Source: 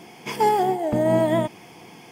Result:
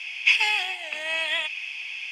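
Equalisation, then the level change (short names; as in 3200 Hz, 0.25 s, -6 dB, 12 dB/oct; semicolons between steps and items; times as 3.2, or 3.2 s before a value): resonant high-pass 2600 Hz, resonance Q 10; LPF 5700 Hz 12 dB/oct; +5.5 dB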